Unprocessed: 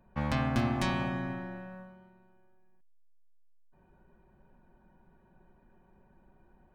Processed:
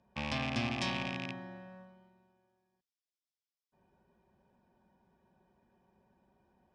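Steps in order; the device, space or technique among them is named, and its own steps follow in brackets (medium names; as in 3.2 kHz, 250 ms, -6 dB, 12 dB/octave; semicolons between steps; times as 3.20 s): car door speaker with a rattle (rattle on loud lows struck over -33 dBFS, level -23 dBFS; cabinet simulation 88–8700 Hz, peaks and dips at 150 Hz -6 dB, 320 Hz -5 dB, 1.4 kHz -6 dB, 3.4 kHz +6 dB, 5.2 kHz +10 dB); trim -4.5 dB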